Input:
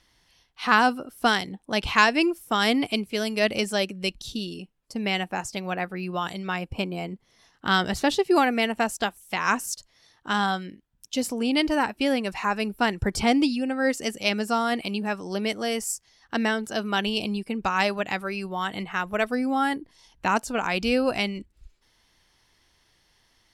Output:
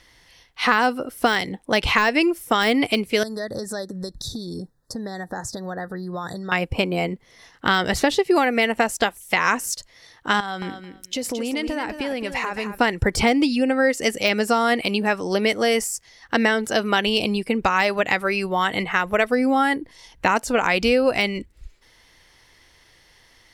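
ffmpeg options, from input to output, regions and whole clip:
-filter_complex "[0:a]asettb=1/sr,asplit=3[a][b][c];[a]atrim=end=3.234[d];[b]atrim=start=3.23:end=6.52,asetpts=PTS-STARTPTS,afade=t=in:d=0.004:c=qsin,afade=t=out:st=3.286:d=0.004:c=qsin,equalizer=f=110:t=o:w=1.4:g=9,acompressor=threshold=-35dB:ratio=5:attack=3.2:release=140:knee=1:detection=peak,asuperstop=centerf=2600:order=20:qfactor=1.6[e];[c]atrim=start=6.516[f];[d][e]acrossfade=d=0.004:c1=hsin:c2=qsin[g];[g][f]acrossfade=d=0.004:c1=qsin:c2=hsin,asettb=1/sr,asplit=3[h][i][j];[h]atrim=end=10.404[k];[i]atrim=start=10.4:end=12.78,asetpts=PTS-STARTPTS,afade=t=in:d=0.004:c=qsin,afade=t=out:st=2.376:d=0.004:c=qsin,acompressor=threshold=-31dB:ratio=16:attack=3.2:release=140:knee=1:detection=peak,aecho=1:1:219|438:0.355|0.0568,atrim=end_sample=104958[l];[j]atrim=start=12.776[m];[k][l]acrossfade=d=0.004:c1=hsin:c2=qsin[n];[n][m]acrossfade=d=0.004:c1=qsin:c2=hsin,deesser=0.55,equalizer=f=200:t=o:w=0.33:g=-4,equalizer=f=500:t=o:w=0.33:g=5,equalizer=f=2k:t=o:w=0.33:g=6,acompressor=threshold=-24dB:ratio=4,volume=8.5dB"

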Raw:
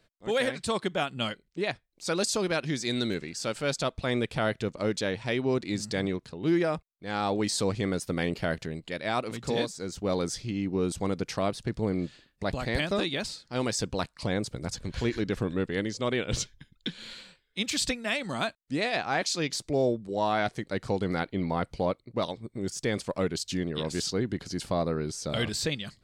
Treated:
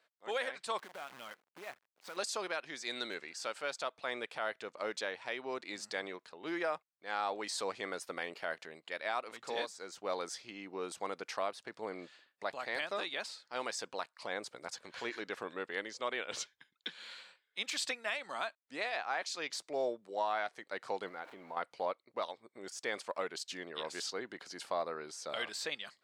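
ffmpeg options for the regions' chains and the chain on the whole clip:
-filter_complex "[0:a]asettb=1/sr,asplit=3[a][b][c];[a]atrim=end=0.784[d];[b]atrim=start=0.78:end=2.17,asetpts=PTS-STARTPTS,afade=t=in:d=0.004:c=qsin,afade=t=out:st=1.386:d=0.004:c=qsin,bass=f=250:g=8,treble=f=4k:g=-14,acompressor=threshold=-34dB:ratio=8:attack=3.2:release=140:knee=1:detection=peak,acrusher=bits=8:dc=4:mix=0:aa=0.000001[e];[c]atrim=start=2.166[f];[d][e]acrossfade=d=0.004:c1=hsin:c2=qsin[g];[g][f]acrossfade=d=0.004:c1=qsin:c2=hsin,asettb=1/sr,asplit=3[h][i][j];[h]atrim=end=21.084[k];[i]atrim=start=21.08:end=21.57,asetpts=PTS-STARTPTS,afade=t=in:d=0.004:c=qsin,afade=t=out:st=0.486:d=0.004:c=qsin,aeval=exprs='val(0)+0.5*0.01*sgn(val(0))':c=same,highshelf=f=3k:g=-10,acompressor=threshold=-32dB:ratio=6:attack=3.2:release=140:knee=1:detection=peak[l];[j]atrim=start=21.566[m];[k][l]acrossfade=d=0.004:c1=hsin:c2=qsin[n];[n][m]acrossfade=d=0.004:c1=qsin:c2=hsin,highpass=890,highshelf=f=2.2k:g=-12,alimiter=level_in=1.5dB:limit=-24dB:level=0:latency=1:release=431,volume=-1.5dB,volume=2.5dB"

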